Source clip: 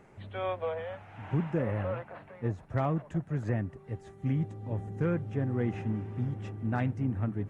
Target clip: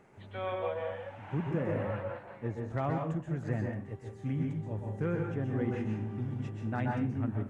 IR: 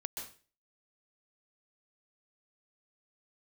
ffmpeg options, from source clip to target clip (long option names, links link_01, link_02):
-filter_complex "[0:a]lowshelf=frequency=86:gain=-7[link_01];[1:a]atrim=start_sample=2205[link_02];[link_01][link_02]afir=irnorm=-1:irlink=0"